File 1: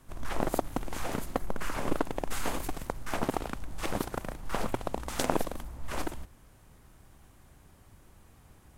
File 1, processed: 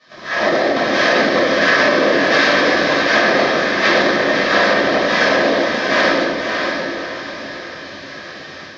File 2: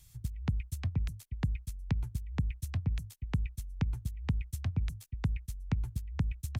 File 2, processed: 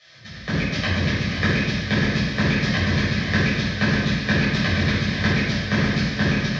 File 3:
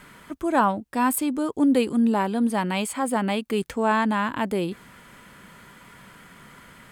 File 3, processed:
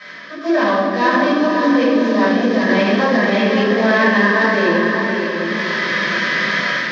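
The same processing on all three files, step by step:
variable-slope delta modulation 32 kbit/s
notch filter 1,400 Hz, Q 8.8
in parallel at −9.5 dB: dead-zone distortion −42.5 dBFS
on the sum: harmonic and percussive parts rebalanced percussive −6 dB
loudspeaker in its box 230–4,900 Hz, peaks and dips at 550 Hz +6 dB, 870 Hz −9 dB, 1,700 Hz +9 dB, 2,700 Hz −5 dB
rectangular room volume 510 cubic metres, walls mixed, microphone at 6.1 metres
automatic gain control gain up to 13 dB
brickwall limiter −8.5 dBFS
spectral tilt +2.5 dB per octave
on a send: feedback delay with all-pass diffusion 573 ms, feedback 43%, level −4 dB
on the sum: level +3 dB

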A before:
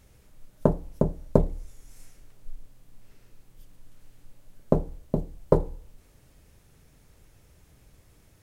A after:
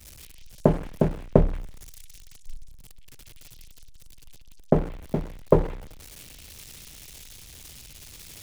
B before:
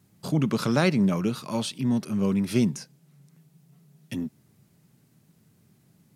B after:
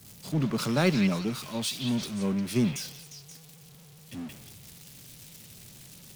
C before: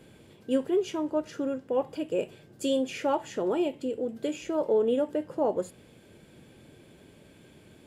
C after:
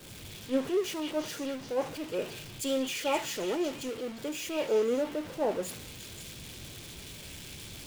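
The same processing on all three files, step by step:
converter with a step at zero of −29 dBFS
echo through a band-pass that steps 177 ms, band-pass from 2,800 Hz, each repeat 0.7 octaves, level 0 dB
multiband upward and downward expander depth 100%
level −6.5 dB

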